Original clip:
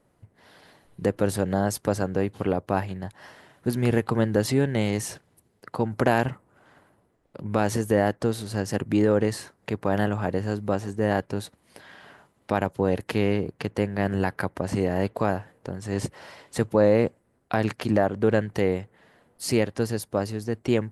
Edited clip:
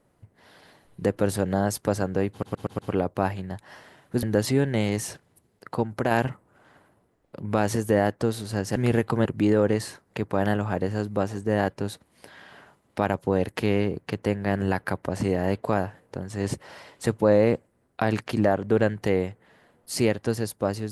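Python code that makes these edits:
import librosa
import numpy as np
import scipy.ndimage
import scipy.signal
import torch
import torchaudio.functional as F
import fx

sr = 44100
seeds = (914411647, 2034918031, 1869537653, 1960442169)

y = fx.edit(x, sr, fx.stutter(start_s=2.31, slice_s=0.12, count=5),
    fx.move(start_s=3.75, length_s=0.49, to_s=8.77),
    fx.clip_gain(start_s=5.84, length_s=0.28, db=-4.0), tone=tone)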